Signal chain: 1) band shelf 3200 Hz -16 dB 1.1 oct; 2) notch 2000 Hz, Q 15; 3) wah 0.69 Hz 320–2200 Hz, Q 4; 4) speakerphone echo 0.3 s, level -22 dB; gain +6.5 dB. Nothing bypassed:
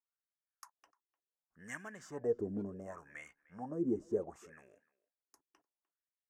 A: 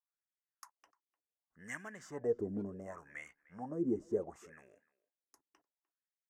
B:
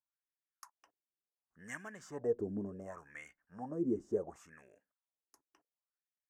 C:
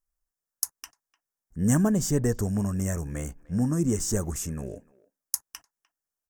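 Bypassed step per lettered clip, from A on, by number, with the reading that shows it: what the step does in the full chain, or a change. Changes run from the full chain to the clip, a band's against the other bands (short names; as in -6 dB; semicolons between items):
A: 2, momentary loudness spread change +3 LU; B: 4, echo-to-direct -31.0 dB to none; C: 3, 8 kHz band +19.0 dB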